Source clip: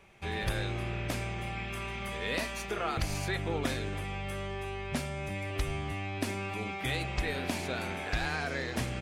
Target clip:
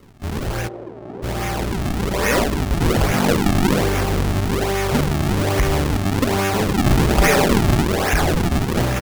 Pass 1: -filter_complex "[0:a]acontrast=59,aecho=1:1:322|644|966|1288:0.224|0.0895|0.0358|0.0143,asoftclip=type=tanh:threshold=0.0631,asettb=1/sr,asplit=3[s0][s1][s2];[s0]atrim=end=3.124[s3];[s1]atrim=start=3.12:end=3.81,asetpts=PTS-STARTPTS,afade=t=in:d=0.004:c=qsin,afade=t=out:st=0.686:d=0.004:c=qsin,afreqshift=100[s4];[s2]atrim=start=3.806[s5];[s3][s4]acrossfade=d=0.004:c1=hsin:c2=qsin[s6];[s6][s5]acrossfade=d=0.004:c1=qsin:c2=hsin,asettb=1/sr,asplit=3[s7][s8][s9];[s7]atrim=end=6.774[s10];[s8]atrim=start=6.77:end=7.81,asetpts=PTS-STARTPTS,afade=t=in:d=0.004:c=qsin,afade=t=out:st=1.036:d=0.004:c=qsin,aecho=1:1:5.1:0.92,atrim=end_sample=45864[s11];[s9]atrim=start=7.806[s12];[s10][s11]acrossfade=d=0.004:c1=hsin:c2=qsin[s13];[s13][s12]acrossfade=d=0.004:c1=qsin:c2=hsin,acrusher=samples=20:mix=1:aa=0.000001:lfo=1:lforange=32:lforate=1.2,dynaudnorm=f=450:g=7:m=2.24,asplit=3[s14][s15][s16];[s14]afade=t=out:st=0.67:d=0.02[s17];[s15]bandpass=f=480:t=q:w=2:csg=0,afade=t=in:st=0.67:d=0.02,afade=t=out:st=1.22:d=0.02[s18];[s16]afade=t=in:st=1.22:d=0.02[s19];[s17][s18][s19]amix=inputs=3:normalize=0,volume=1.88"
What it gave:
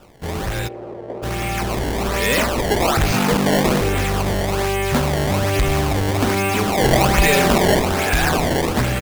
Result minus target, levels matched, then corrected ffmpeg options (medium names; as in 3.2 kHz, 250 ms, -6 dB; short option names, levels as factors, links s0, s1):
decimation with a swept rate: distortion -5 dB
-filter_complex "[0:a]acontrast=59,aecho=1:1:322|644|966|1288:0.224|0.0895|0.0358|0.0143,asoftclip=type=tanh:threshold=0.0631,asettb=1/sr,asplit=3[s0][s1][s2];[s0]atrim=end=3.124[s3];[s1]atrim=start=3.12:end=3.81,asetpts=PTS-STARTPTS,afade=t=in:d=0.004:c=qsin,afade=t=out:st=0.686:d=0.004:c=qsin,afreqshift=100[s4];[s2]atrim=start=3.806[s5];[s3][s4]acrossfade=d=0.004:c1=hsin:c2=qsin[s6];[s6][s5]acrossfade=d=0.004:c1=qsin:c2=hsin,asettb=1/sr,asplit=3[s7][s8][s9];[s7]atrim=end=6.774[s10];[s8]atrim=start=6.77:end=7.81,asetpts=PTS-STARTPTS,afade=t=in:d=0.004:c=qsin,afade=t=out:st=1.036:d=0.004:c=qsin,aecho=1:1:5.1:0.92,atrim=end_sample=45864[s11];[s9]atrim=start=7.806[s12];[s10][s11]acrossfade=d=0.004:c1=hsin:c2=qsin[s13];[s13][s12]acrossfade=d=0.004:c1=qsin:c2=hsin,acrusher=samples=51:mix=1:aa=0.000001:lfo=1:lforange=81.6:lforate=1.2,dynaudnorm=f=450:g=7:m=2.24,asplit=3[s14][s15][s16];[s14]afade=t=out:st=0.67:d=0.02[s17];[s15]bandpass=f=480:t=q:w=2:csg=0,afade=t=in:st=0.67:d=0.02,afade=t=out:st=1.22:d=0.02[s18];[s16]afade=t=in:st=1.22:d=0.02[s19];[s17][s18][s19]amix=inputs=3:normalize=0,volume=1.88"